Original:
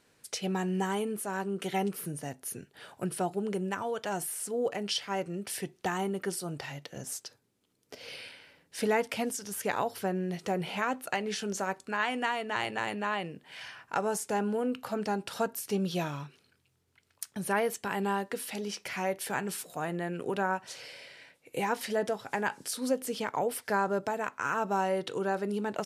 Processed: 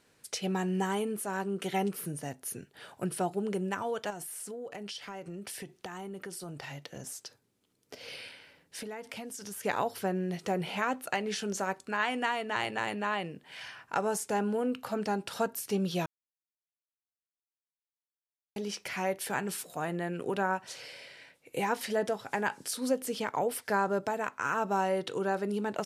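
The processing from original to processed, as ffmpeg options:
ffmpeg -i in.wav -filter_complex "[0:a]asettb=1/sr,asplit=3[link_01][link_02][link_03];[link_01]atrim=end=4.104[link_04];[link_02]atrim=start=4.1:end=9.64,asetpts=PTS-STARTPTS,afade=type=in:duration=0.004:curve=qsin,afade=type=out:start_time=5.536:duration=0.004:curve=qsin,acompressor=threshold=-37dB:ratio=12:attack=3.2:release=140:knee=1:detection=peak[link_05];[link_03]atrim=start=9.636[link_06];[link_04][link_05]acrossfade=duration=0.004:curve1=hsin:curve2=qsin[link_07];[link_07][link_06]acrossfade=duration=0.004:curve1=qsin:curve2=hsin,asplit=3[link_08][link_09][link_10];[link_08]atrim=end=16.06,asetpts=PTS-STARTPTS,afade=type=out:start_time=16.056:duration=0.004:curve=hsin[link_11];[link_09]atrim=start=16.06:end=18.56,asetpts=PTS-STARTPTS,volume=0[link_12];[link_10]atrim=start=18.56,asetpts=PTS-STARTPTS,afade=type=in:duration=0.004:curve=hsin[link_13];[link_11][link_12][link_13]concat=n=3:v=0:a=1" out.wav

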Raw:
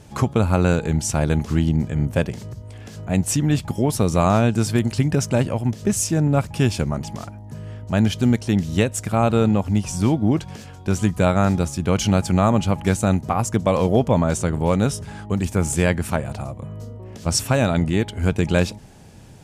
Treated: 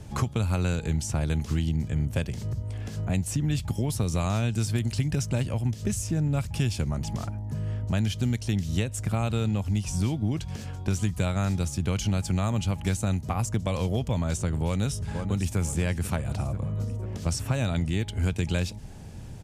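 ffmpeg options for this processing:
ffmpeg -i in.wav -filter_complex "[0:a]asplit=2[link_01][link_02];[link_02]afade=type=in:start_time=14.65:duration=0.01,afade=type=out:start_time=15.58:duration=0.01,aecho=0:1:490|980|1470|1960|2450|2940:0.199526|0.119716|0.0718294|0.0430977|0.0258586|0.0155152[link_03];[link_01][link_03]amix=inputs=2:normalize=0,lowshelf=frequency=130:gain=11,acrossover=split=110|2200[link_04][link_05][link_06];[link_04]acompressor=threshold=-28dB:ratio=4[link_07];[link_05]acompressor=threshold=-27dB:ratio=4[link_08];[link_06]acompressor=threshold=-32dB:ratio=4[link_09];[link_07][link_08][link_09]amix=inputs=3:normalize=0,volume=-2dB" out.wav

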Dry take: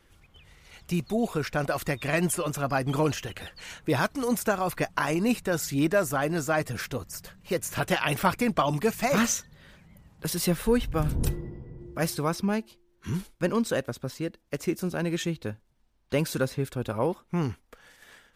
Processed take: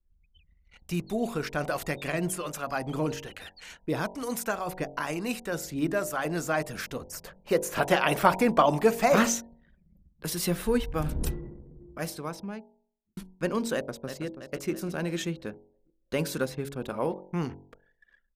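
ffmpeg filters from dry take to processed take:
ffmpeg -i in.wav -filter_complex "[0:a]asettb=1/sr,asplit=3[link_01][link_02][link_03];[link_01]atrim=end=2.124[link_04];[link_02]atrim=start=2.12:end=6.25,asetpts=PTS-STARTPTS,afade=type=in:duration=0.004:curve=qsin,afade=type=out:start_time=4.126:duration=0.004:curve=qsin,acrossover=split=650[link_05][link_06];[link_05]aeval=exprs='val(0)*(1-0.5/2+0.5/2*cos(2*PI*1.1*n/s))':channel_layout=same[link_07];[link_06]aeval=exprs='val(0)*(1-0.5/2-0.5/2*cos(2*PI*1.1*n/s))':channel_layout=same[link_08];[link_07][link_08]amix=inputs=2:normalize=0[link_09];[link_03]atrim=start=6.246[link_10];[link_04][link_09]acrossfade=duration=0.004:curve1=hsin:curve2=qsin[link_11];[link_11][link_10]acrossfade=duration=0.004:curve1=qsin:curve2=hsin,asettb=1/sr,asplit=3[link_12][link_13][link_14];[link_12]atrim=end=7.124[link_15];[link_13]atrim=start=7.12:end=9.3,asetpts=PTS-STARTPTS,afade=type=in:duration=0.004:curve=qsin,afade=type=out:start_time=2.176:duration=0.004:curve=qsin,equalizer=frequency=590:width_type=o:width=2.7:gain=7[link_16];[link_14]atrim=start=9.296[link_17];[link_15][link_16]acrossfade=duration=0.004:curve1=hsin:curve2=qsin[link_18];[link_18][link_17]acrossfade=duration=0.004:curve1=qsin:curve2=hsin,asplit=2[link_19][link_20];[link_20]afade=type=in:start_time=13.74:duration=0.01,afade=type=out:start_time=14.25:duration=0.01,aecho=0:1:330|660|990|1320|1650|1980|2310:0.334965|0.200979|0.120588|0.0723525|0.0434115|0.0260469|0.0156281[link_21];[link_19][link_21]amix=inputs=2:normalize=0,asplit=2[link_22][link_23];[link_22]atrim=end=13.17,asetpts=PTS-STARTPTS,afade=type=out:start_time=11.38:duration=1.79[link_24];[link_23]atrim=start=13.17,asetpts=PTS-STARTPTS,afade=type=in:duration=0.004:curve=hsin[link_25];[link_24][link_25]concat=n=2:v=0:a=1,anlmdn=0.0251,equalizer=frequency=110:width=4.5:gain=-14.5,bandreject=frequency=46.41:width_type=h:width=4,bandreject=frequency=92.82:width_type=h:width=4,bandreject=frequency=139.23:width_type=h:width=4,bandreject=frequency=185.64:width_type=h:width=4,bandreject=frequency=232.05:width_type=h:width=4,bandreject=frequency=278.46:width_type=h:width=4,bandreject=frequency=324.87:width_type=h:width=4,bandreject=frequency=371.28:width_type=h:width=4,bandreject=frequency=417.69:width_type=h:width=4,bandreject=frequency=464.1:width_type=h:width=4,bandreject=frequency=510.51:width_type=h:width=4,bandreject=frequency=556.92:width_type=h:width=4,bandreject=frequency=603.33:width_type=h:width=4,bandreject=frequency=649.74:width_type=h:width=4,bandreject=frequency=696.15:width_type=h:width=4,bandreject=frequency=742.56:width_type=h:width=4,bandreject=frequency=788.97:width_type=h:width=4,bandreject=frequency=835.38:width_type=h:width=4,bandreject=frequency=881.79:width_type=h:width=4,bandreject=frequency=928.2:width_type=h:width=4,bandreject=frequency=974.61:width_type=h:width=4,volume=-1.5dB" out.wav

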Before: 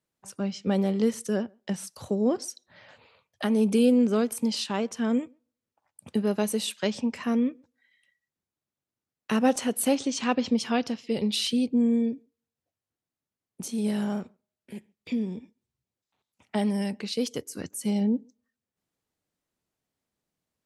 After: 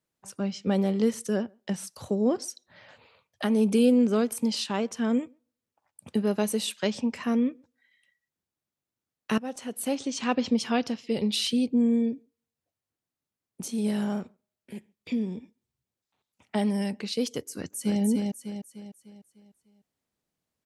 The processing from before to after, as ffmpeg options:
ffmpeg -i in.wav -filter_complex "[0:a]asplit=2[link_01][link_02];[link_02]afade=type=in:start_time=17.54:duration=0.01,afade=type=out:start_time=18.01:duration=0.01,aecho=0:1:300|600|900|1200|1500|1800:0.707946|0.318576|0.143359|0.0645116|0.0290302|0.0130636[link_03];[link_01][link_03]amix=inputs=2:normalize=0,asplit=2[link_04][link_05];[link_04]atrim=end=9.38,asetpts=PTS-STARTPTS,afade=type=out:start_time=9.376:duration=0.004:curve=hsin:silence=0.133352[link_06];[link_05]atrim=start=9.38,asetpts=PTS-STARTPTS,afade=type=in:duration=1.04:silence=0.133352[link_07];[link_06][link_07]concat=n=2:v=0:a=1" out.wav

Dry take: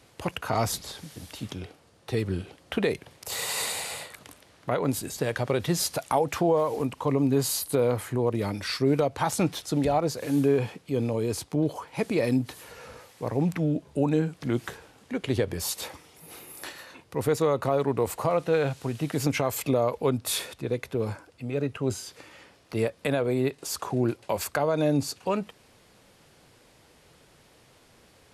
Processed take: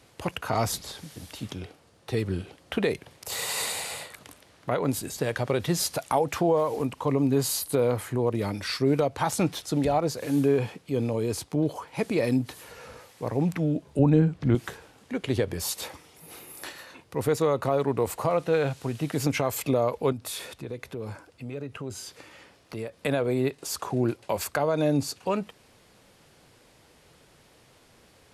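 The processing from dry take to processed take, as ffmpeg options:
ffmpeg -i in.wav -filter_complex "[0:a]asettb=1/sr,asplit=3[link_01][link_02][link_03];[link_01]atrim=end=13.994[link_04];[link_02]atrim=start=13.99:end=14.55,asetpts=PTS-STARTPTS,afade=type=in:duration=0.004:curve=qsin,afade=type=out:start_time=0.556:duration=0.004:curve=qsin,aemphasis=mode=reproduction:type=bsi[link_05];[link_03]atrim=start=14.546[link_06];[link_04][link_05]acrossfade=duration=0.004:curve1=hsin:curve2=qsin[link_07];[link_07][link_06]acrossfade=duration=0.004:curve1=qsin:curve2=hsin,asettb=1/sr,asplit=3[link_08][link_09][link_10];[link_08]atrim=end=20.124[link_11];[link_09]atrim=start=20.12:end=23.02,asetpts=PTS-STARTPTS,afade=type=in:duration=0.004:curve=qsin,afade=type=out:start_time=2.896:duration=0.004:curve=qsin,acompressor=threshold=-34dB:ratio=2.5:attack=3.2:release=140:knee=1:detection=peak[link_12];[link_10]atrim=start=23.016[link_13];[link_11][link_12]acrossfade=duration=0.004:curve1=hsin:curve2=qsin[link_14];[link_14][link_13]acrossfade=duration=0.004:curve1=qsin:curve2=hsin" out.wav

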